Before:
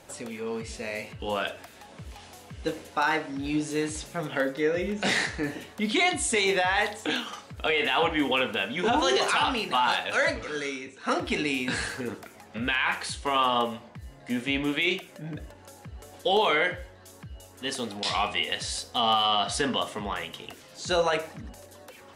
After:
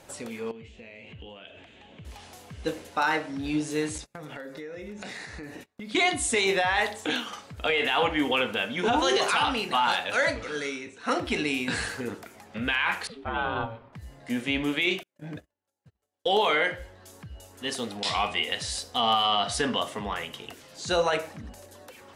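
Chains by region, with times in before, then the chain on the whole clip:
0.51–2.05 synth low-pass 7000 Hz, resonance Q 3.2 + compressor, threshold -40 dBFS + EQ curve 350 Hz 0 dB, 1300 Hz -9 dB, 3100 Hz +3 dB, 5200 Hz -23 dB
3.98–5.95 notch 3100 Hz, Q 8.6 + gate -41 dBFS, range -31 dB + compressor 8:1, threshold -36 dBFS
13.07–13.93 air absorption 410 m + ring modulator 340 Hz
15.03–16.8 HPF 140 Hz 6 dB/oct + gate -43 dBFS, range -38 dB
whole clip: dry

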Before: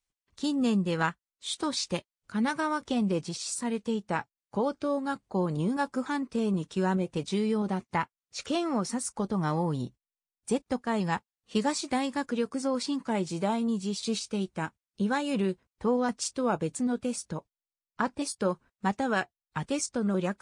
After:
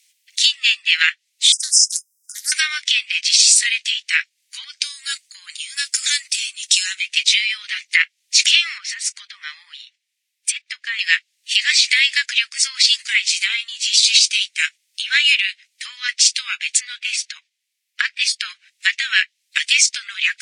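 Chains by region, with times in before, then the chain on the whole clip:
1.52–2.52 brick-wall FIR band-stop 1500–4900 Hz + pre-emphasis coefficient 0.9 + Doppler distortion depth 0.38 ms
4.64–7 tone controls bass -2 dB, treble +8 dB + compressor, threshold -32 dBFS + three-band expander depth 100%
8.78–10.99 tilt -3 dB/oct + compressor 1.5:1, threshold -29 dBFS
12.53–14.59 bell 340 Hz -14 dB 0.4 oct + three-band expander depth 40%
16.8–18.45 low shelf 410 Hz +10.5 dB + mismatched tape noise reduction decoder only
whole clip: treble ducked by the level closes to 3000 Hz, closed at -24.5 dBFS; steep high-pass 2000 Hz 48 dB/oct; maximiser +31 dB; gain -1 dB

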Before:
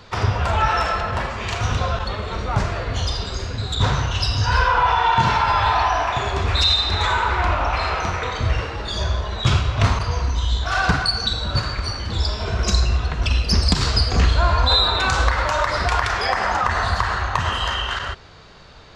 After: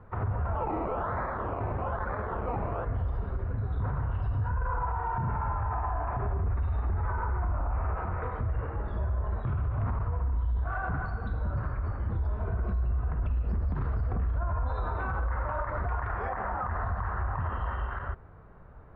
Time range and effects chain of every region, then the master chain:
0.55–2.85 decimation with a swept rate 21×, swing 60% 1.1 Hz + overdrive pedal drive 13 dB, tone 5400 Hz, clips at -7.5 dBFS
4.5–7.97 polynomial smoothing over 25 samples + low shelf 320 Hz +7.5 dB
whole clip: LPF 1500 Hz 24 dB/oct; low shelf 160 Hz +8 dB; limiter -14 dBFS; gain -9 dB

